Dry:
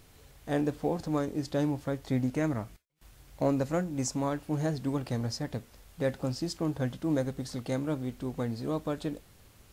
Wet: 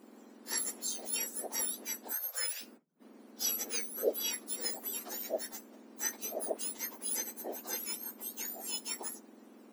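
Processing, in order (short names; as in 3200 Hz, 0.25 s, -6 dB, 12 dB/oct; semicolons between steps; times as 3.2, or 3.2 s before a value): spectrum mirrored in octaves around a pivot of 1800 Hz; 2.13–2.61 steep high-pass 510 Hz 72 dB/oct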